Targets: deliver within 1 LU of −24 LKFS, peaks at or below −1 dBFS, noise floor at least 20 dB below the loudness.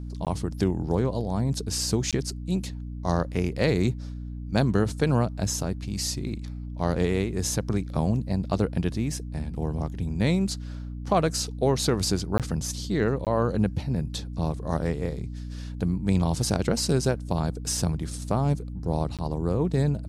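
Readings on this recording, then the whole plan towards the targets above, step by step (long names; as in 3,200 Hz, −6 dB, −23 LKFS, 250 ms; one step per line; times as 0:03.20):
number of dropouts 5; longest dropout 17 ms; mains hum 60 Hz; hum harmonics up to 300 Hz; level of the hum −32 dBFS; integrated loudness −27.0 LKFS; sample peak −9.5 dBFS; target loudness −24.0 LKFS
→ repair the gap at 0:00.25/0:02.11/0:12.38/0:13.25/0:19.17, 17 ms
mains-hum notches 60/120/180/240/300 Hz
level +3 dB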